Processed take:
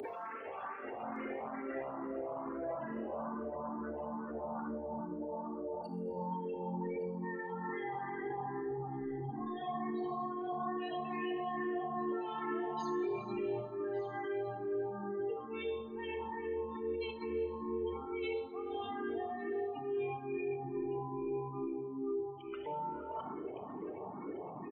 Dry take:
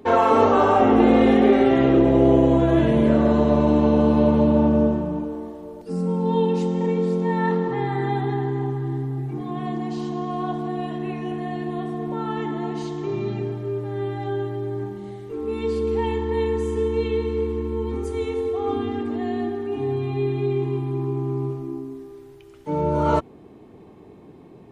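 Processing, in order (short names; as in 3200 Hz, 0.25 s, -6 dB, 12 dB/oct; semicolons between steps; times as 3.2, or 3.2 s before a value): one-sided fold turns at -13.5 dBFS; spectral gate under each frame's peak -25 dB strong; HPF 1400 Hz 6 dB/oct; negative-ratio compressor -36 dBFS, ratio -0.5; limiter -44 dBFS, peak gain reduction 21.5 dB; echo 1.162 s -16.5 dB; Schroeder reverb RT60 1.4 s, combs from 28 ms, DRR 6 dB; endless phaser +2.3 Hz; gain +13 dB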